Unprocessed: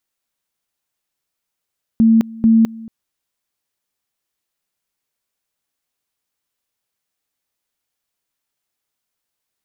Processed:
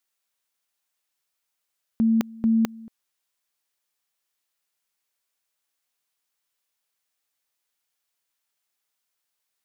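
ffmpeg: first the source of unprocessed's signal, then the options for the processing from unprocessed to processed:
-f lavfi -i "aevalsrc='pow(10,(-7.5-22*gte(mod(t,0.44),0.21))/20)*sin(2*PI*225*t)':d=0.88:s=44100"
-af "lowshelf=f=440:g=-11"

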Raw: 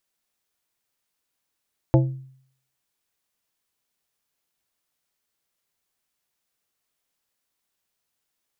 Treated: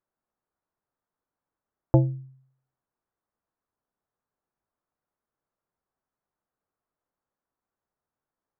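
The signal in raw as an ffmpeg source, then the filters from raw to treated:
-f lavfi -i "aevalsrc='0.266*pow(10,-3*t/0.61)*sin(2*PI*132*t)+0.178*pow(10,-3*t/0.321)*sin(2*PI*330*t)+0.119*pow(10,-3*t/0.231)*sin(2*PI*528*t)+0.0794*pow(10,-3*t/0.198)*sin(2*PI*660*t)+0.0531*pow(10,-3*t/0.165)*sin(2*PI*858*t)':d=0.89:s=44100"
-af "lowpass=f=1.4k:w=0.5412,lowpass=f=1.4k:w=1.3066"

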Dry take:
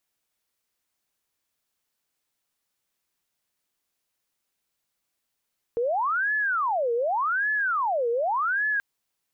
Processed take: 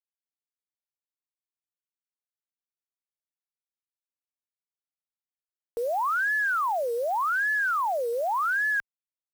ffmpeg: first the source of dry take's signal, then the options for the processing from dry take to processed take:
-f lavfi -i "aevalsrc='0.0794*sin(2*PI*(1092.5*t-627.5/(2*PI*0.86)*sin(2*PI*0.86*t)))':d=3.03:s=44100"
-af "acrusher=bits=8:dc=4:mix=0:aa=0.000001,equalizer=f=110:w=0.51:g=-14"

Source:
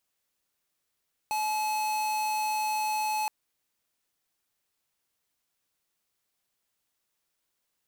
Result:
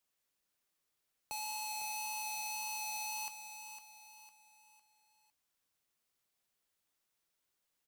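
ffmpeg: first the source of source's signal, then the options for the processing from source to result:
-f lavfi -i "aevalsrc='0.0355*(2*lt(mod(858*t,1),0.5)-1)':d=1.97:s=44100"
-filter_complex "[0:a]acrossover=split=180|3000[a][b][c];[b]acompressor=threshold=-48dB:ratio=2[d];[a][d][c]amix=inputs=3:normalize=0,flanger=delay=2.7:depth=5:regen=86:speed=1.8:shape=triangular,asplit=2[e][f];[f]aecho=0:1:505|1010|1515|2020:0.355|0.142|0.0568|0.0227[g];[e][g]amix=inputs=2:normalize=0"

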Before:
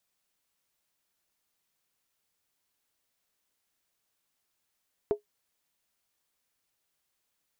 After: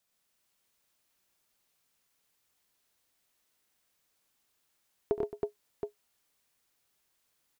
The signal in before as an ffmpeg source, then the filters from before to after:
-f lavfi -i "aevalsrc='0.126*pow(10,-3*t/0.12)*sin(2*PI*416*t)+0.0335*pow(10,-3*t/0.095)*sin(2*PI*663.1*t)+0.00891*pow(10,-3*t/0.082)*sin(2*PI*888.6*t)+0.00237*pow(10,-3*t/0.079)*sin(2*PI*955.1*t)+0.000631*pow(10,-3*t/0.074)*sin(2*PI*1103.6*t)':d=0.63:s=44100"
-af "aecho=1:1:69|93|121|219|321|721:0.188|0.596|0.562|0.188|0.668|0.422"

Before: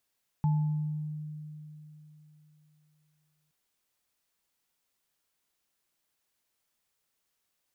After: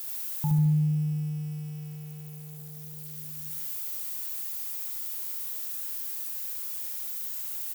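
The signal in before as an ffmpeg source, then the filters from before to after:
-f lavfi -i "aevalsrc='0.0794*pow(10,-3*t/3.4)*sin(2*PI*152*t)+0.0178*pow(10,-3*t/0.85)*sin(2*PI*867*t)':d=3.07:s=44100"
-af "aeval=exprs='val(0)+0.5*0.00473*sgn(val(0))':c=same,aemphasis=mode=production:type=50fm,aecho=1:1:72|144|216|288|360|432|504:0.708|0.354|0.177|0.0885|0.0442|0.0221|0.0111"

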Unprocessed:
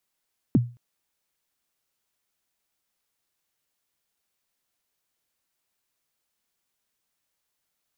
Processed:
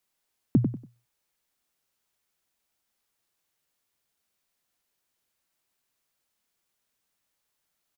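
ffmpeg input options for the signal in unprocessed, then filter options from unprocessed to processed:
-f lavfi -i "aevalsrc='0.266*pow(10,-3*t/0.32)*sin(2*PI*(320*0.027/log(120/320)*(exp(log(120/320)*min(t,0.027)/0.027)-1)+120*max(t-0.027,0)))':d=0.22:s=44100"
-filter_complex "[0:a]asplit=2[a][b];[b]adelay=95,lowpass=f=2k:p=1,volume=-6dB,asplit=2[c][d];[d]adelay=95,lowpass=f=2k:p=1,volume=0.27,asplit=2[e][f];[f]adelay=95,lowpass=f=2k:p=1,volume=0.27[g];[a][c][e][g]amix=inputs=4:normalize=0"

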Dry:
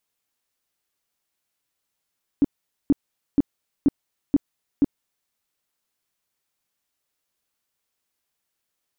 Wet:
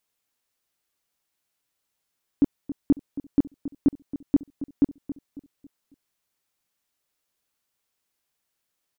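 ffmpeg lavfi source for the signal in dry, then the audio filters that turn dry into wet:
-f lavfi -i "aevalsrc='0.251*sin(2*PI*283*mod(t,0.48))*lt(mod(t,0.48),7/283)':d=2.88:s=44100"
-filter_complex "[0:a]asplit=2[a][b];[b]adelay=274,lowpass=f=870:p=1,volume=-13dB,asplit=2[c][d];[d]adelay=274,lowpass=f=870:p=1,volume=0.41,asplit=2[e][f];[f]adelay=274,lowpass=f=870:p=1,volume=0.41,asplit=2[g][h];[h]adelay=274,lowpass=f=870:p=1,volume=0.41[i];[a][c][e][g][i]amix=inputs=5:normalize=0"

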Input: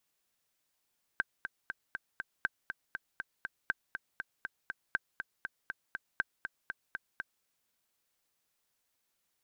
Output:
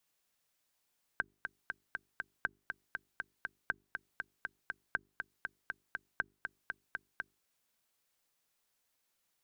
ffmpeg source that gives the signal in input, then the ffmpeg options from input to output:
-f lavfi -i "aevalsrc='pow(10,(-16-8*gte(mod(t,5*60/240),60/240))/20)*sin(2*PI*1560*mod(t,60/240))*exp(-6.91*mod(t,60/240)/0.03)':d=6.25:s=44100"
-filter_complex "[0:a]bandreject=f=50:t=h:w=6,bandreject=f=100:t=h:w=6,bandreject=f=150:t=h:w=6,bandreject=f=200:t=h:w=6,bandreject=f=250:t=h:w=6,bandreject=f=300:t=h:w=6,bandreject=f=350:t=h:w=6,bandreject=f=400:t=h:w=6,acrossover=split=110|1700[a][b][c];[c]alimiter=level_in=10dB:limit=-24dB:level=0:latency=1:release=354,volume=-10dB[d];[a][b][d]amix=inputs=3:normalize=0"

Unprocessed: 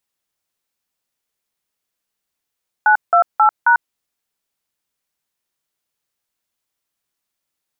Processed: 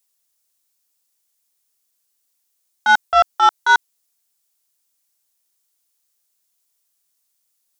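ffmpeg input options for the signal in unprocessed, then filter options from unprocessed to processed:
-f lavfi -i "aevalsrc='0.282*clip(min(mod(t,0.268),0.095-mod(t,0.268))/0.002,0,1)*(eq(floor(t/0.268),0)*(sin(2*PI*852*mod(t,0.268))+sin(2*PI*1477*mod(t,0.268)))+eq(floor(t/0.268),1)*(sin(2*PI*697*mod(t,0.268))+sin(2*PI*1336*mod(t,0.268)))+eq(floor(t/0.268),2)*(sin(2*PI*852*mod(t,0.268))+sin(2*PI*1336*mod(t,0.268)))+eq(floor(t/0.268),3)*(sin(2*PI*941*mod(t,0.268))+sin(2*PI*1477*mod(t,0.268))))':d=1.072:s=44100"
-af "acontrast=77,agate=range=-9dB:threshold=-7dB:ratio=16:detection=peak,bass=f=250:g=-5,treble=f=4k:g=13"

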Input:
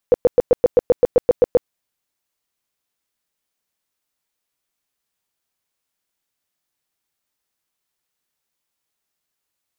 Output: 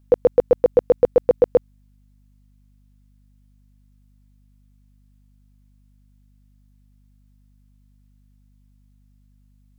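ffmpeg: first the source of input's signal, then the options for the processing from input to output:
-f lavfi -i "aevalsrc='0.447*sin(2*PI*492*mod(t,0.13))*lt(mod(t,0.13),10/492)':d=1.56:s=44100"
-af "aeval=exprs='val(0)+0.00178*(sin(2*PI*50*n/s)+sin(2*PI*2*50*n/s)/2+sin(2*PI*3*50*n/s)/3+sin(2*PI*4*50*n/s)/4+sin(2*PI*5*50*n/s)/5)':c=same"

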